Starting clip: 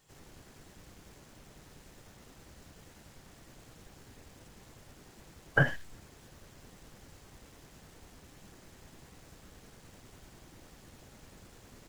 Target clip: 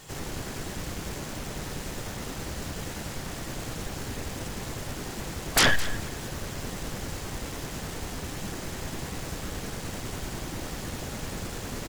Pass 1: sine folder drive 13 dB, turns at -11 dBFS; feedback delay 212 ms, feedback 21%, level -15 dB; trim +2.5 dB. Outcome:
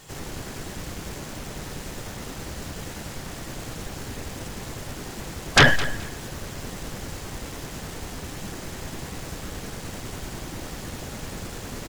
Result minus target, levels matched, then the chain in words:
sine folder: distortion -4 dB
sine folder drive 13 dB, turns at -18 dBFS; feedback delay 212 ms, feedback 21%, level -15 dB; trim +2.5 dB

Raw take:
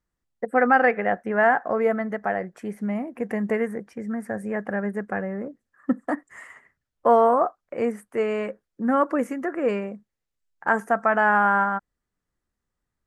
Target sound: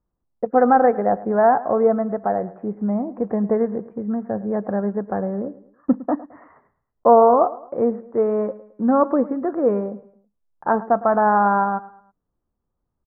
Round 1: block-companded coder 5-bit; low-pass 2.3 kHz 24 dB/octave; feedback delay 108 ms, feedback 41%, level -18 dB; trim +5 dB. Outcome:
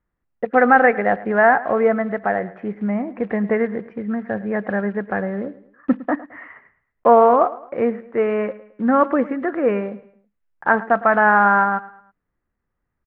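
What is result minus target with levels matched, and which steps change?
2 kHz band +11.5 dB
change: low-pass 1.1 kHz 24 dB/octave

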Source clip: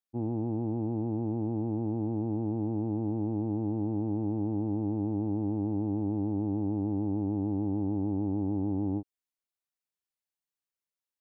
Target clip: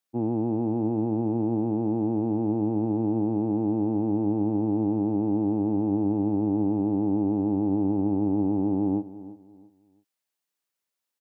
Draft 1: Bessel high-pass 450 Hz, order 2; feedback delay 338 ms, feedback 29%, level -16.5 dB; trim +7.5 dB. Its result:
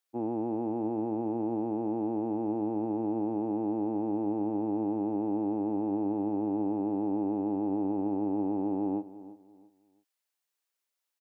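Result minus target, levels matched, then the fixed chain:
125 Hz band -7.5 dB
Bessel high-pass 170 Hz, order 2; feedback delay 338 ms, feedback 29%, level -16.5 dB; trim +7.5 dB

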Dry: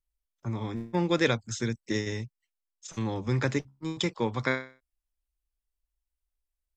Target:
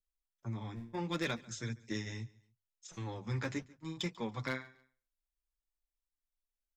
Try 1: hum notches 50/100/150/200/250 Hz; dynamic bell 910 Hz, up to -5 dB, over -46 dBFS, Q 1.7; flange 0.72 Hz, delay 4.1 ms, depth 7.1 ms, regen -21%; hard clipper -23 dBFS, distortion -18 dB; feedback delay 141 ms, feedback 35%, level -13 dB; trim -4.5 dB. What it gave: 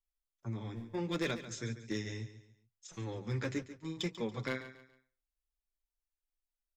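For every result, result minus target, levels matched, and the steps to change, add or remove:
echo-to-direct +9.5 dB; 1 kHz band -3.5 dB
change: feedback delay 141 ms, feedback 35%, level -22.5 dB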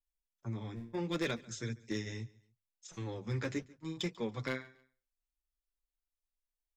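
1 kHz band -3.5 dB
change: dynamic bell 430 Hz, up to -5 dB, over -46 dBFS, Q 1.7

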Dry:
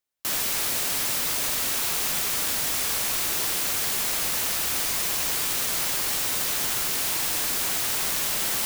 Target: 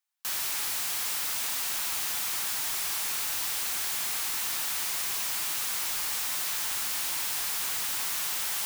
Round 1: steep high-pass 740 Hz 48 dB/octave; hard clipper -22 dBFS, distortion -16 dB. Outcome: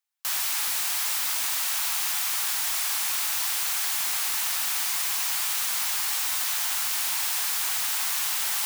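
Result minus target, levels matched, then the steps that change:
hard clipper: distortion -8 dB
change: hard clipper -29 dBFS, distortion -8 dB

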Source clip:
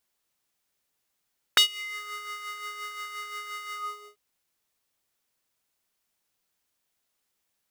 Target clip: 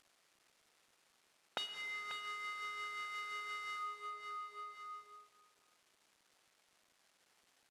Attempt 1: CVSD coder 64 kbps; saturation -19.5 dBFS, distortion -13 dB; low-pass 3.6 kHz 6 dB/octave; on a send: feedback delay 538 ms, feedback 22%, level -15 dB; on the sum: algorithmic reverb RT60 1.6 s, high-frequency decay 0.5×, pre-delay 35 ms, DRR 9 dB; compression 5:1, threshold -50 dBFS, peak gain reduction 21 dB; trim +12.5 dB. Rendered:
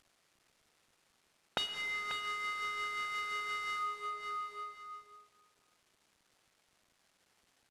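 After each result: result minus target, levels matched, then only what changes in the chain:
compression: peak gain reduction -6 dB; 250 Hz band +3.0 dB
change: compression 5:1, threshold -57.5 dBFS, peak gain reduction 27 dB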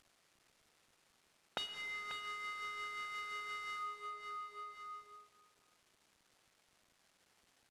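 250 Hz band +3.0 dB
add after low-pass: bass shelf 190 Hz -10.5 dB

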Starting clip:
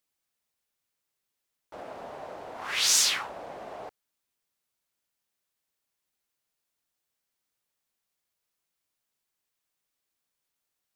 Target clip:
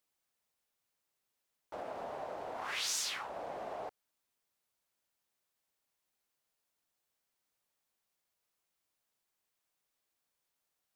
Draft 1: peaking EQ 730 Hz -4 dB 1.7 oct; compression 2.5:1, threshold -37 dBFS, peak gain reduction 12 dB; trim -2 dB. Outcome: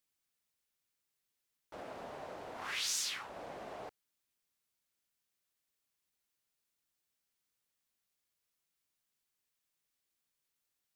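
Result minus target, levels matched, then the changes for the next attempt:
1 kHz band -4.0 dB
change: peaking EQ 730 Hz +3.5 dB 1.7 oct

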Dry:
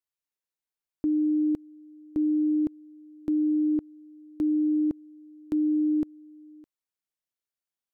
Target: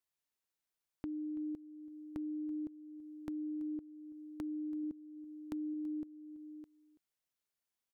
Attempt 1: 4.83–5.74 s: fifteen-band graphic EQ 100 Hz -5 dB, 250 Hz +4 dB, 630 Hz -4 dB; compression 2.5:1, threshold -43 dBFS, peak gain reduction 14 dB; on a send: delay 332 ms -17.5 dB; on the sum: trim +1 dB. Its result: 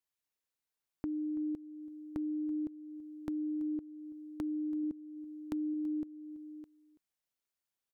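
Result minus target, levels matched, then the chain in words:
compression: peak gain reduction -4 dB
4.83–5.74 s: fifteen-band graphic EQ 100 Hz -5 dB, 250 Hz +4 dB, 630 Hz -4 dB; compression 2.5:1, threshold -50 dBFS, peak gain reduction 18 dB; on a send: delay 332 ms -17.5 dB; on the sum: trim +1 dB

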